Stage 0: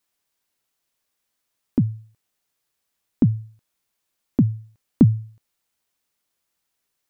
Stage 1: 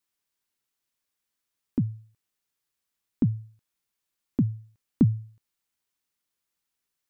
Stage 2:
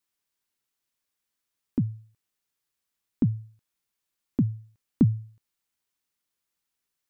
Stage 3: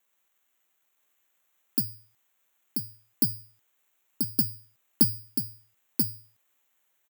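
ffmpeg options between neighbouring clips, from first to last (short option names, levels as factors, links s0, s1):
-af "equalizer=f=640:t=o:w=0.78:g=-4.5,volume=0.501"
-af anull
-af "acrusher=samples=9:mix=1:aa=0.000001,aemphasis=mode=production:type=riaa,aecho=1:1:985:0.596"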